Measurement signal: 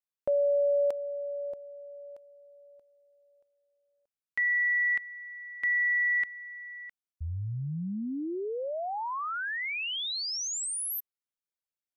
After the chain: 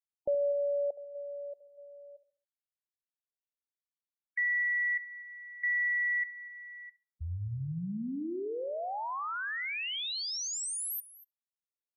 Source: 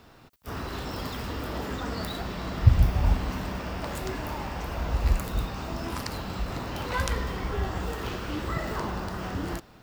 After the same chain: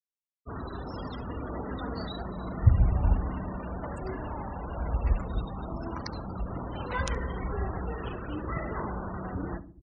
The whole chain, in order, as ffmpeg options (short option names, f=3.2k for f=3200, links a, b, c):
-filter_complex "[0:a]asplit=2[a][b];[b]aecho=0:1:246:0.178[c];[a][c]amix=inputs=2:normalize=0,afftfilt=real='re*gte(hypot(re,im),0.0251)':imag='im*gte(hypot(re,im),0.0251)':win_size=1024:overlap=0.75,asplit=2[d][e];[e]adelay=69,lowpass=f=1k:p=1,volume=-13.5dB,asplit=2[f][g];[g]adelay=69,lowpass=f=1k:p=1,volume=0.42,asplit=2[h][i];[i]adelay=69,lowpass=f=1k:p=1,volume=0.42,asplit=2[j][k];[k]adelay=69,lowpass=f=1k:p=1,volume=0.42[l];[f][h][j][l]amix=inputs=4:normalize=0[m];[d][m]amix=inputs=2:normalize=0,volume=-2.5dB"